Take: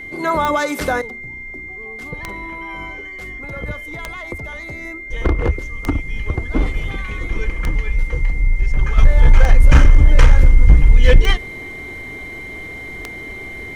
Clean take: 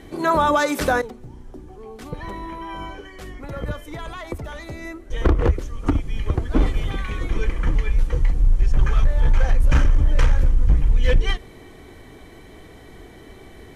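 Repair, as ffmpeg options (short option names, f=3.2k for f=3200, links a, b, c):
-af "adeclick=t=4,bandreject=f=2.1k:w=30,asetnsamples=n=441:p=0,asendcmd='8.98 volume volume -7dB',volume=0dB"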